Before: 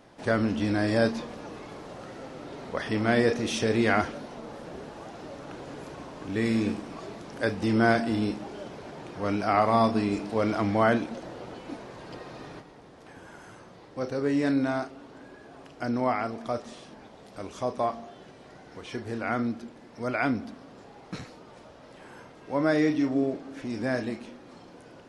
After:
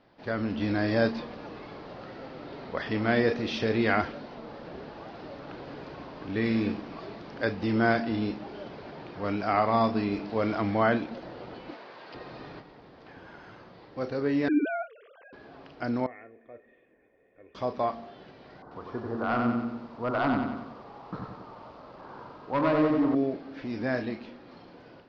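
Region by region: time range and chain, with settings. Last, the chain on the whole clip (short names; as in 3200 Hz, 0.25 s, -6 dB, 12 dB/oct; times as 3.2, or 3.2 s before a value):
11.71–12.15 weighting filter A + Doppler distortion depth 0.26 ms
14.48–15.33 sine-wave speech + high shelf 2800 Hz +11 dB
16.06–17.55 vocal tract filter e + bell 640 Hz -8.5 dB 0.84 oct + comb 2.8 ms, depth 42%
18.62–23.15 resonant high shelf 1700 Hz -13.5 dB, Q 3 + overloaded stage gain 21 dB + lo-fi delay 92 ms, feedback 55%, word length 9-bit, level -3.5 dB
whole clip: elliptic low-pass 4800 Hz, stop band 80 dB; AGC gain up to 6.5 dB; gain -6.5 dB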